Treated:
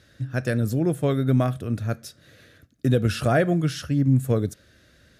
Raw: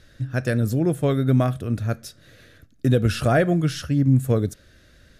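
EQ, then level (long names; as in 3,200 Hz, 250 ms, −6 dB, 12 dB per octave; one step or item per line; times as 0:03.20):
high-pass filter 73 Hz
−1.5 dB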